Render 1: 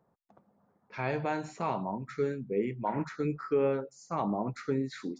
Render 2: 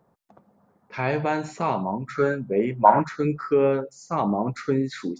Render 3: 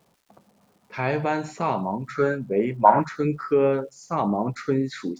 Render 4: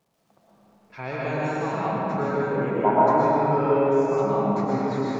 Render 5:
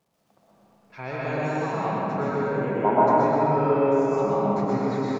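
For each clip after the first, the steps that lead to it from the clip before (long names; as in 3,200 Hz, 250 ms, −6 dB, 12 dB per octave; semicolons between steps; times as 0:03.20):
gain on a spectral selection 0:02.15–0:03.00, 520–1,700 Hz +11 dB; level +7.5 dB
surface crackle 510 per second −54 dBFS
comb and all-pass reverb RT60 4.5 s, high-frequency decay 0.45×, pre-delay 80 ms, DRR −8 dB; level −8.5 dB
single-tap delay 127 ms −5.5 dB; level −1.5 dB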